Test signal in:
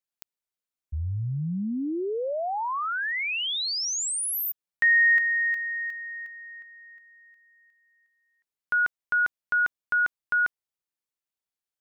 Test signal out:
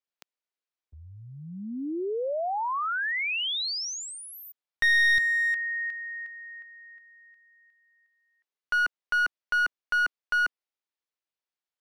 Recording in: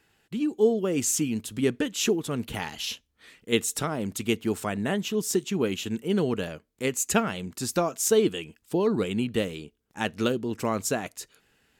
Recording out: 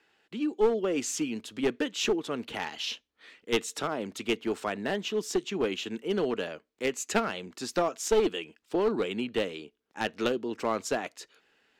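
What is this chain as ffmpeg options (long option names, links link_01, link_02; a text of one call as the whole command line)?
ffmpeg -i in.wav -filter_complex "[0:a]acrossover=split=250 5800:gain=0.126 1 0.158[link_01][link_02][link_03];[link_01][link_02][link_03]amix=inputs=3:normalize=0,aeval=exprs='clip(val(0),-1,0.0708)':channel_layout=same" out.wav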